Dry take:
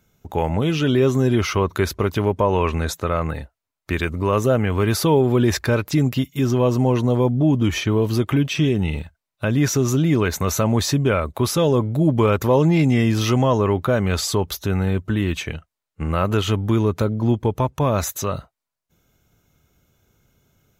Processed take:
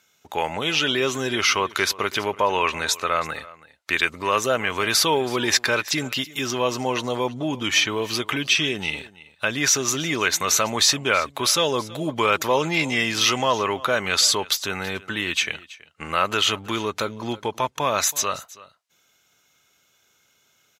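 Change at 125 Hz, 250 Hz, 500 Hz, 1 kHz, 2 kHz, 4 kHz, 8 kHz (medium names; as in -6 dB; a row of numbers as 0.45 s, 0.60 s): -16.0 dB, -10.0 dB, -5.0 dB, +1.5 dB, +6.5 dB, +8.5 dB, +7.0 dB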